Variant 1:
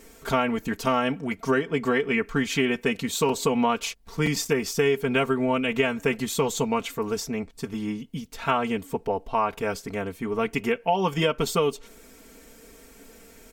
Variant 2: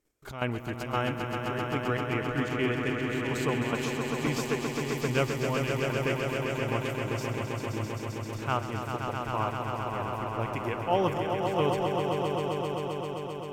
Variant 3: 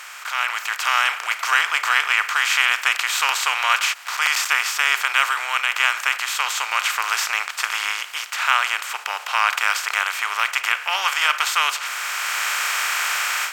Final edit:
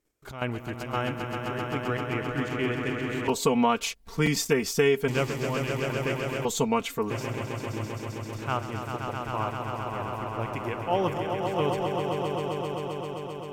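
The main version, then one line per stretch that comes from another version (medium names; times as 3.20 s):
2
3.28–5.08 s: from 1
6.45–7.10 s: from 1
not used: 3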